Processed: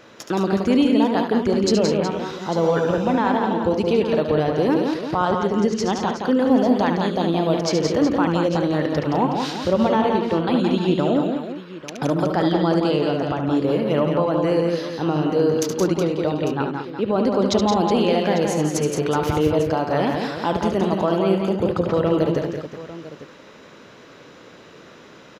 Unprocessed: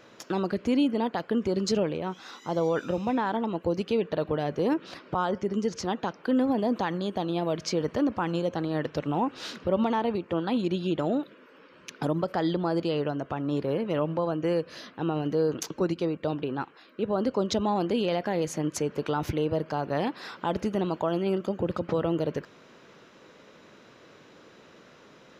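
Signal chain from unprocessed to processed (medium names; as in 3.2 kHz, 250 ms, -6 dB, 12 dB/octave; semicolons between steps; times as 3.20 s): multi-tap echo 72/171/206/369/848 ms -7.5/-5/-10.5/-11/-15 dB; trim +6 dB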